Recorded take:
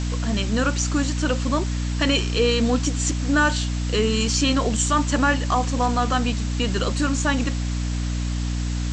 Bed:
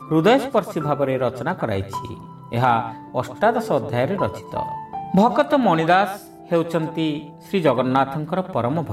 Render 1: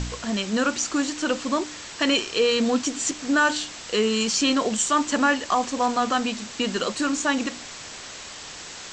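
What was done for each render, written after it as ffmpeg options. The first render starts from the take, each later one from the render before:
-af "bandreject=f=60:t=h:w=4,bandreject=f=120:t=h:w=4,bandreject=f=180:t=h:w=4,bandreject=f=240:t=h:w=4,bandreject=f=300:t=h:w=4"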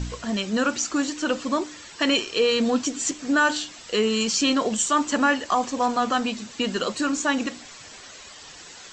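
-af "afftdn=nr=9:nf=-39"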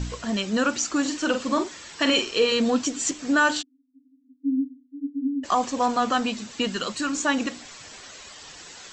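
-filter_complex "[0:a]asettb=1/sr,asplit=3[a][b][c];[a]atrim=end=1.014[d];[b]atrim=start=1.01:end=2.52,asetpts=PTS-STARTPTS,afade=t=in:d=0.004:c=qsin,afade=t=out:st=1.506:d=0.004:c=qsin,asplit=2[e][f];[f]adelay=45,volume=-7.5dB[g];[e][g]amix=inputs=2:normalize=0,atrim=end_sample=66591[h];[c]atrim=start=2.516[i];[d][h]acrossfade=d=0.004:c1=hsin:c2=qsin[j];[j][i]acrossfade=d=0.004:c1=qsin:c2=hsin,asplit=3[k][l][m];[k]afade=t=out:st=3.61:d=0.02[n];[l]asuperpass=centerf=270:order=12:qfactor=7.6,afade=t=in:st=3.61:d=0.02,afade=t=out:st=5.43:d=0.02[o];[m]afade=t=in:st=5.43:d=0.02[p];[n][o][p]amix=inputs=3:normalize=0,asettb=1/sr,asplit=3[q][r][s];[q]atrim=end=6.674[t];[r]atrim=start=6.67:end=7.15,asetpts=PTS-STARTPTS,afade=t=in:d=0.004:c=qsin,afade=t=out:st=0.476:d=0.004:c=qsin,equalizer=f=500:w=0.84:g=-6.5[u];[s]atrim=start=7.146[v];[t][u]acrossfade=d=0.004:c1=hsin:c2=qsin[w];[w][v]acrossfade=d=0.004:c1=qsin:c2=hsin"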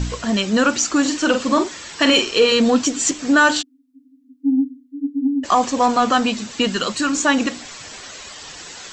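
-af "acontrast=83"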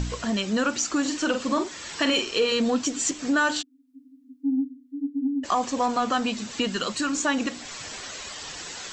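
-af "acompressor=threshold=-35dB:ratio=1.5"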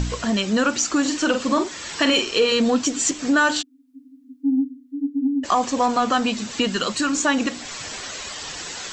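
-af "volume=4.5dB"

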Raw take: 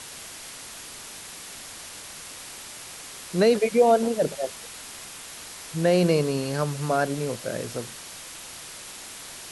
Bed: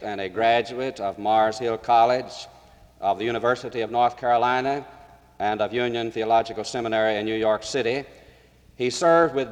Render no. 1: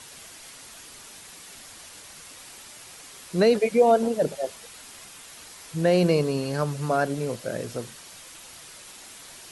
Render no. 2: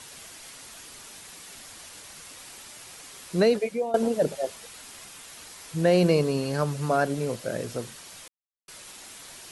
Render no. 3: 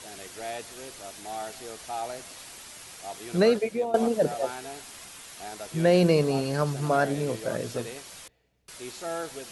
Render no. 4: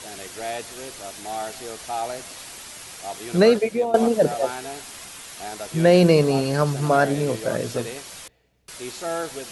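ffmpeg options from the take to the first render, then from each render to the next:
-af "afftdn=nr=6:nf=-41"
-filter_complex "[0:a]asplit=4[a][b][c][d];[a]atrim=end=3.94,asetpts=PTS-STARTPTS,afade=t=out:st=3.35:d=0.59:silence=0.125893[e];[b]atrim=start=3.94:end=8.28,asetpts=PTS-STARTPTS,afade=t=in:d=0.004:c=hsin:silence=0.125893,afade=t=out:st=4.336:d=0.004:c=hsin[f];[c]atrim=start=8.28:end=8.68,asetpts=PTS-STARTPTS,volume=0[g];[d]atrim=start=8.68,asetpts=PTS-STARTPTS,afade=t=in:d=0.004:c=hsin[h];[e][f][g][h]concat=n=4:v=0:a=1"
-filter_complex "[1:a]volume=-16.5dB[a];[0:a][a]amix=inputs=2:normalize=0"
-af "volume=5.5dB"

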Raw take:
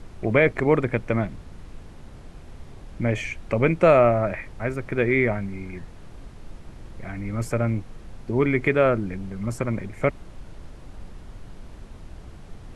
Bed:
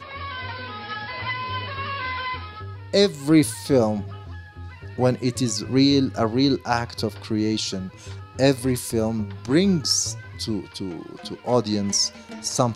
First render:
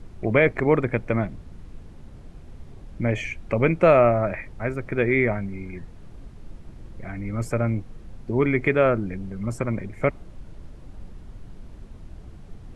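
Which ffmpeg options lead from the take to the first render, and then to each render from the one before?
-af "afftdn=nr=6:nf=-44"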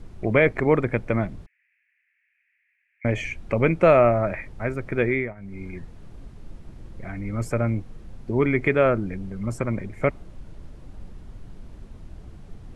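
-filter_complex "[0:a]asettb=1/sr,asplit=3[a][b][c];[a]atrim=end=1.464[d];[b]atrim=start=1.46:end=3.05,asetpts=PTS-STARTPTS,afade=t=in:d=0.004:c=qsin,afade=t=out:st=1.586:d=0.004:c=qsin,asuperpass=centerf=2100:order=8:qfactor=2.4[e];[c]atrim=start=3.046[f];[d][e]acrossfade=d=0.004:c1=hsin:c2=qsin[g];[g][f]acrossfade=d=0.004:c1=qsin:c2=hsin,asplit=3[h][i][j];[h]atrim=end=5.34,asetpts=PTS-STARTPTS,afade=t=out:st=5.05:d=0.29:silence=0.125893[k];[i]atrim=start=5.34:end=5.36,asetpts=PTS-STARTPTS,volume=-18dB[l];[j]atrim=start=5.36,asetpts=PTS-STARTPTS,afade=t=in:d=0.29:silence=0.125893[m];[k][l][m]concat=n=3:v=0:a=1"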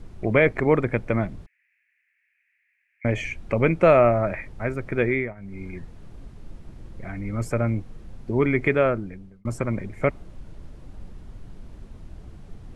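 -filter_complex "[0:a]asplit=2[a][b];[a]atrim=end=9.45,asetpts=PTS-STARTPTS,afade=t=out:st=8.73:d=0.72[c];[b]atrim=start=9.45,asetpts=PTS-STARTPTS,afade=t=in:d=0.004:c=hsin[d];[c][d]concat=n=2:v=0:a=1"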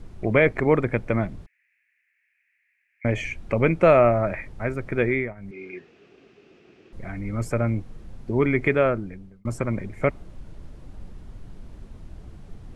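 -filter_complex "[0:a]asettb=1/sr,asplit=3[a][b][c];[a]atrim=end=5.514[d];[b]atrim=start=5.51:end=6.93,asetpts=PTS-STARTPTS,afade=t=in:d=0.004:c=qsin,afade=t=out:st=1.416:d=0.004:c=qsin,highpass=350,equalizer=f=400:t=q:w=4:g=10,equalizer=f=570:t=q:w=4:g=-5,equalizer=f=940:t=q:w=4:g=-10,equalizer=f=2.6k:t=q:w=4:g=10,equalizer=f=4.1k:t=q:w=4:g=-3,lowpass=f=5.7k:w=0.5412,lowpass=f=5.7k:w=1.3066[e];[c]atrim=start=6.926[f];[d][e]acrossfade=d=0.004:c1=hsin:c2=qsin[g];[g][f]acrossfade=d=0.004:c1=qsin:c2=hsin"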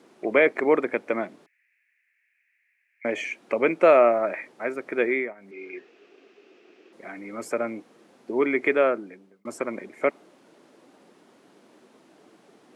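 -af "highpass=f=280:w=0.5412,highpass=f=280:w=1.3066"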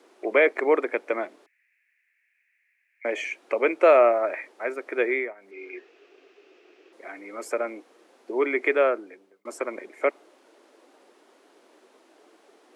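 -af "highpass=f=320:w=0.5412,highpass=f=320:w=1.3066"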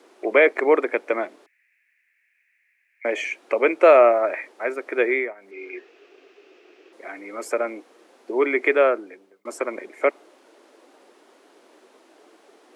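-af "volume=3.5dB"

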